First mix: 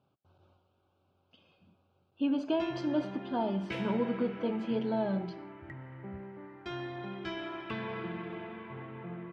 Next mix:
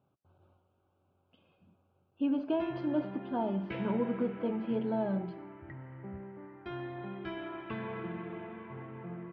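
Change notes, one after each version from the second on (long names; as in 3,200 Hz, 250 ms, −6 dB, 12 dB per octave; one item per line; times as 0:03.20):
master: add high-frequency loss of the air 370 metres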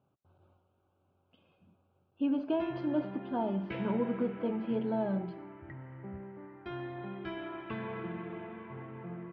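nothing changed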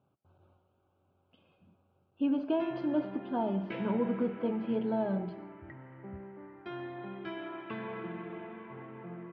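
speech: send +7.5 dB
background: add high-pass filter 160 Hz 12 dB per octave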